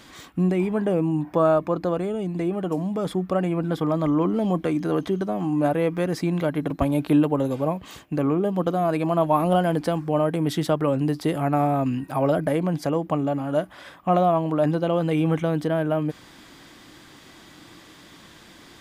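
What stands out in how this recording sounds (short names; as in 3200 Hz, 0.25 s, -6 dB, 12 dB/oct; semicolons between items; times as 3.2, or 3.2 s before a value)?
noise floor -49 dBFS; spectral tilt -6.0 dB/oct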